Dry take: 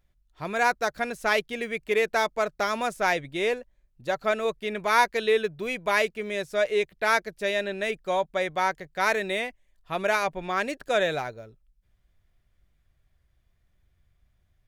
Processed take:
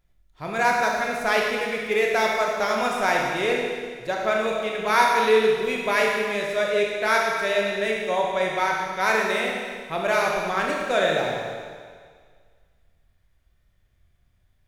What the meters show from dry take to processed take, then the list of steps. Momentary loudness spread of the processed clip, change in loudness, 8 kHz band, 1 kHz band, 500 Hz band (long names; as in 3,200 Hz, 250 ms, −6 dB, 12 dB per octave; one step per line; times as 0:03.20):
8 LU, +3.5 dB, +4.0 dB, +4.0 dB, +4.0 dB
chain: four-comb reverb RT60 1.8 s, combs from 25 ms, DRR −1.5 dB